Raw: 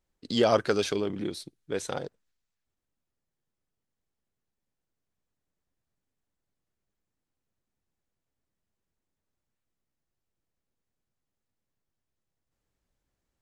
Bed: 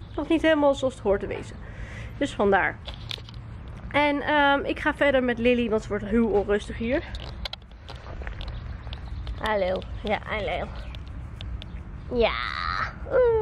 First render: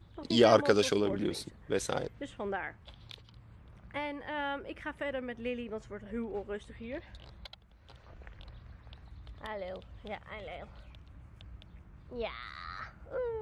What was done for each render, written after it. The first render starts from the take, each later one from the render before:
mix in bed −15.5 dB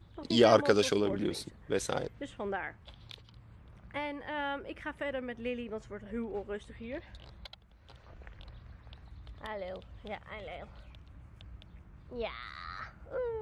no processing that can be heard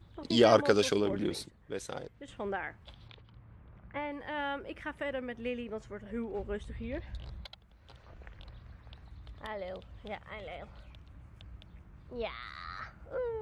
0:01.46–0:02.28: clip gain −7 dB
0:03.08–0:04.12: low-pass filter 2,300 Hz
0:06.39–0:07.42: low-shelf EQ 150 Hz +11 dB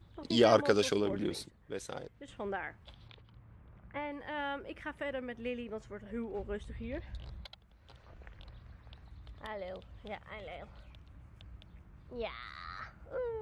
level −2 dB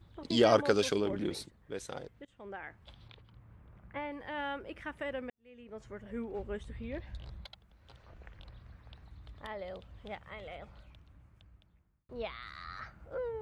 0:02.25–0:02.94: fade in, from −20.5 dB
0:05.30–0:05.88: fade in quadratic
0:10.58–0:12.09: fade out

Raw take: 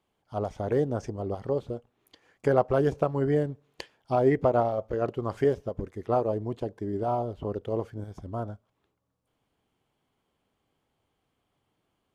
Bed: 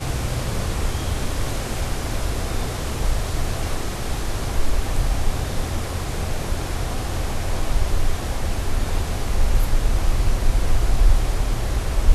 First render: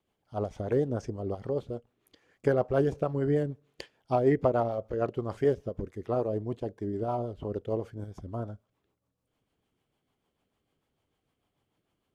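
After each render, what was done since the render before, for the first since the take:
rotating-speaker cabinet horn 6.7 Hz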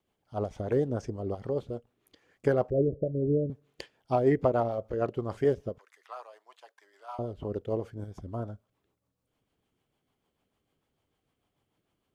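0:02.70–0:03.50: Butterworth low-pass 630 Hz 96 dB per octave
0:05.78–0:07.19: high-pass filter 980 Hz 24 dB per octave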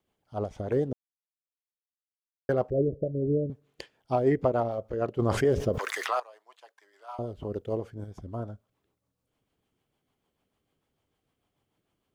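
0:00.93–0:02.49: silence
0:05.19–0:06.20: envelope flattener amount 70%
0:07.18–0:07.80: high-shelf EQ 4,900 Hz +4.5 dB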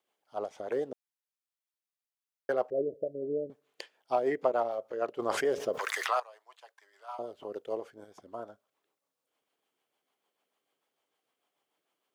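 high-pass filter 500 Hz 12 dB per octave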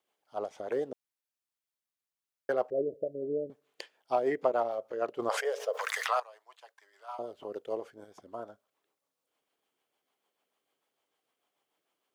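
0:05.29–0:06.19: linear-phase brick-wall high-pass 420 Hz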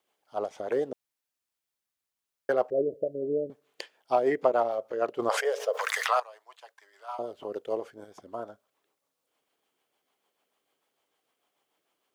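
level +4 dB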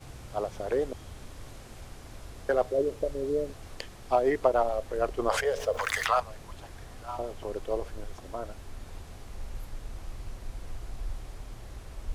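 mix in bed −20.5 dB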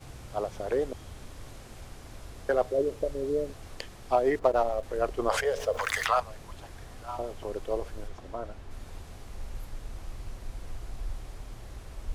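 0:04.39–0:04.83: running median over 15 samples
0:08.07–0:08.70: high-shelf EQ 7,100 Hz → 4,800 Hz −11 dB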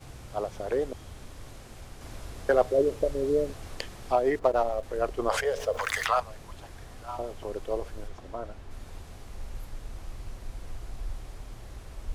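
0:02.01–0:04.12: clip gain +3.5 dB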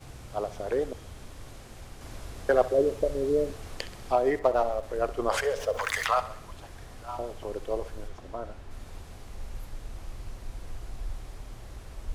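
feedback echo with a high-pass in the loop 65 ms, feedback 58%, level −15 dB

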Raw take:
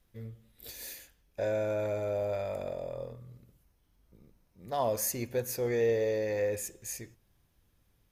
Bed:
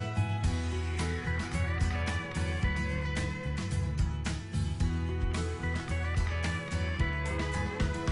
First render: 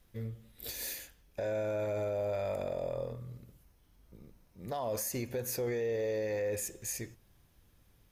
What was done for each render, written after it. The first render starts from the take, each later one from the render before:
in parallel at −3 dB: downward compressor, threshold −40 dBFS, peak gain reduction 15 dB
on the sum: brickwall limiter −27 dBFS, peak gain reduction 9.5 dB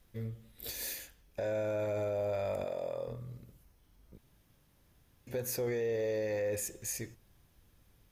0:02.64–0:03.08: high-pass filter 320 Hz 6 dB per octave
0:04.18–0:05.27: fill with room tone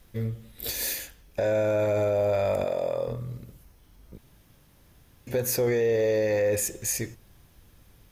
level +9.5 dB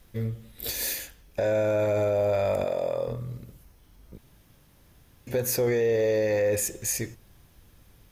no processing that can be heard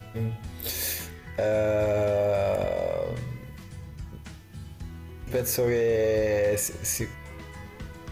mix in bed −9.5 dB

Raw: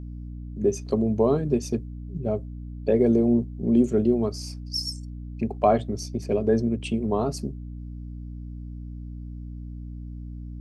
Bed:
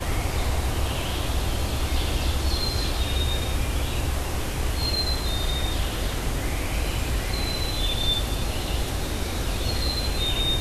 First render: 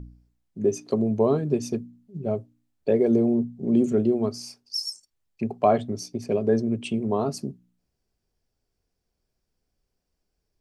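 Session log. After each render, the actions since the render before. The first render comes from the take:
hum removal 60 Hz, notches 5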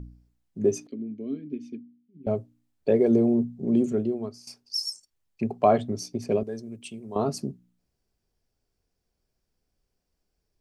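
0:00.87–0:02.27: formant filter i
0:03.56–0:04.47: fade out, to −14.5 dB
0:06.43–0:07.16: first-order pre-emphasis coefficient 0.8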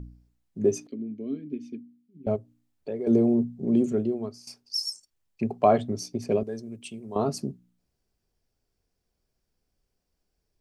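0:02.36–0:03.07: downward compressor 1.5 to 1, threshold −49 dBFS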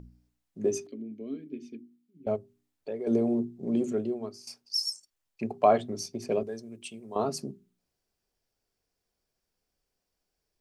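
low-shelf EQ 260 Hz −9 dB
mains-hum notches 50/100/150/200/250/300/350/400 Hz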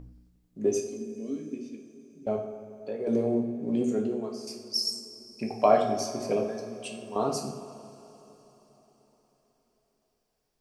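bucket-brigade delay 89 ms, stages 2,048, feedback 76%, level −15 dB
coupled-rooms reverb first 0.58 s, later 4.6 s, from −19 dB, DRR 2 dB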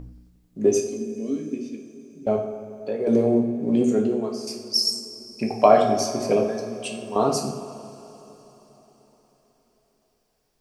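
level +7 dB
brickwall limiter −3 dBFS, peak gain reduction 2 dB

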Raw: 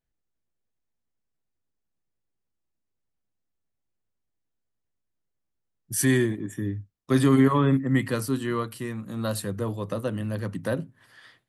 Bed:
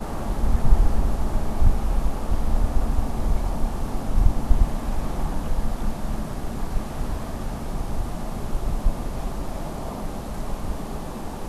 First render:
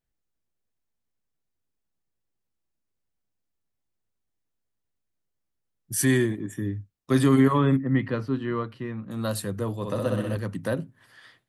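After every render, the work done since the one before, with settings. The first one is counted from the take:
0:07.76–0:09.11: high-frequency loss of the air 300 metres
0:09.75–0:10.37: flutter between parallel walls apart 10.8 metres, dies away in 1.3 s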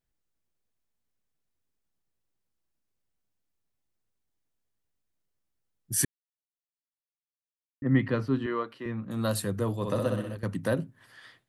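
0:06.05–0:07.82: silence
0:08.46–0:08.86: high-pass filter 340 Hz
0:09.96–0:10.43: fade out, to −15 dB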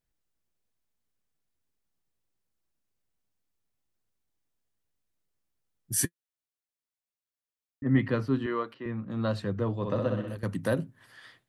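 0:06.00–0:07.98: notch comb filter 170 Hz
0:08.74–0:10.28: high-frequency loss of the air 190 metres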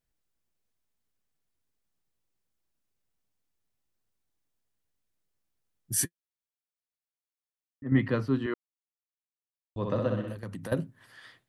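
0:06.04–0:07.92: clip gain −6.5 dB
0:08.54–0:09.76: silence
0:10.32–0:10.72: downward compressor, threshold −35 dBFS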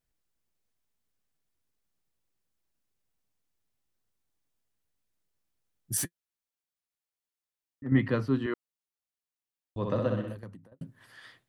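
0:05.97–0:07.87: gain into a clipping stage and back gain 28 dB
0:10.18–0:10.81: fade out and dull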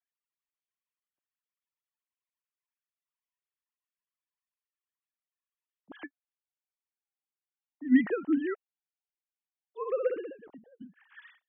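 three sine waves on the formant tracks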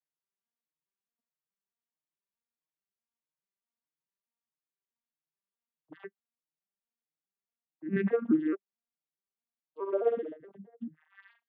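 vocoder with an arpeggio as carrier major triad, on D#3, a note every 213 ms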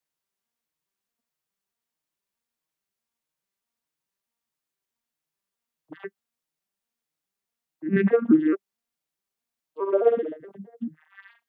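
level +8 dB

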